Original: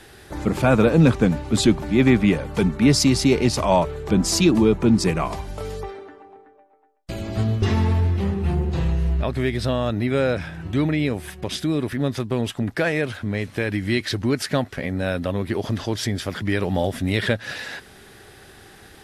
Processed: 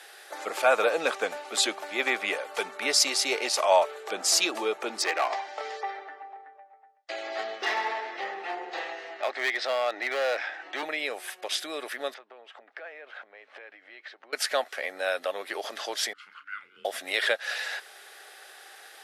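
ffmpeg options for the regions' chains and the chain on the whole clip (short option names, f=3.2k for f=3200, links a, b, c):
-filter_complex "[0:a]asettb=1/sr,asplit=3[a][b][c];[a]atrim=end=5.024[d];[b]atrim=start=5.02:end=10.83,asetpts=PTS-STARTPTS,afade=t=in:d=0.004:c=qsin,afade=t=out:st=5.806:d=0.004:c=qsin,highpass=270,equalizer=f=310:t=q:w=4:g=7,equalizer=f=800:t=q:w=4:g=6,equalizer=f=1.9k:t=q:w=4:g=9,lowpass=f=6k:w=0.5412,lowpass=f=6k:w=1.3066,asoftclip=type=hard:threshold=-18dB[e];[c]atrim=start=10.826[f];[d][e]acrossfade=d=0.004:c1=hsin:c2=qsin[g];[g][f]acrossfade=d=0.004:c1=qsin:c2=hsin,asettb=1/sr,asplit=3[h][i][j];[h]atrim=end=12.144[k];[i]atrim=start=12.14:end=14.33,asetpts=PTS-STARTPTS,afade=t=in:d=0.004:c=qsin,afade=t=out:st=2.186:d=0.004:c=qsin,acompressor=threshold=-34dB:ratio=16:attack=3.2:release=140:knee=1:detection=peak,highpass=230,lowpass=2.3k[l];[j]atrim=start=14.326[m];[k][l]acrossfade=d=0.004:c1=hsin:c2=qsin[n];[n][m]acrossfade=d=0.004:c1=qsin:c2=hsin,asettb=1/sr,asplit=3[o][p][q];[o]atrim=end=16.134[r];[p]atrim=start=16.13:end=16.85,asetpts=PTS-STARTPTS,afade=t=in:d=0.004:c=qsin,afade=t=out:st=0.716:d=0.004:c=qsin,asplit=3[s][t][u];[s]bandpass=f=530:t=q:w=8,volume=0dB[v];[t]bandpass=f=1.84k:t=q:w=8,volume=-6dB[w];[u]bandpass=f=2.48k:t=q:w=8,volume=-9dB[x];[v][w][x]amix=inputs=3:normalize=0,afreqshift=-390,asplit=2[y][z];[z]adelay=35,volume=-11.5dB[aa];[y][aa]amix=inputs=2:normalize=0,atrim=end_sample=31752[ab];[q]atrim=start=16.846[ac];[r][ab]acrossfade=d=0.004:c1=hsin:c2=qsin[ad];[ad][ac]acrossfade=d=0.004:c1=qsin:c2=hsin,highpass=f=560:w=0.5412,highpass=f=560:w=1.3066,bandreject=f=980:w=8.8"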